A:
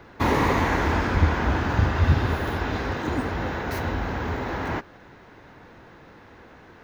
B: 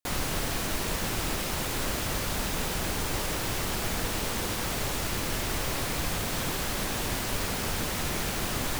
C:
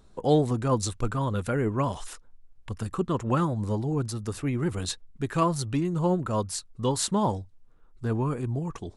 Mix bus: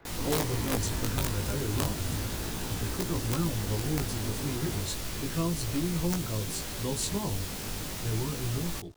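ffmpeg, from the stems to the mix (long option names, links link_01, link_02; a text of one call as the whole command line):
ffmpeg -i stem1.wav -i stem2.wav -i stem3.wav -filter_complex "[0:a]asoftclip=type=tanh:threshold=-19dB,volume=-5.5dB[link_01];[1:a]volume=-1.5dB[link_02];[2:a]equalizer=frequency=220:width_type=o:width=0.26:gain=-9.5,aeval=exprs='val(0)*gte(abs(val(0)),0.00376)':channel_layout=same,volume=-0.5dB[link_03];[link_01][link_02][link_03]amix=inputs=3:normalize=0,acrossover=split=410|3000[link_04][link_05][link_06];[link_05]acompressor=threshold=-45dB:ratio=2[link_07];[link_04][link_07][link_06]amix=inputs=3:normalize=0,aeval=exprs='(mod(6.68*val(0)+1,2)-1)/6.68':channel_layout=same,flanger=delay=17.5:depth=2.3:speed=0.34" out.wav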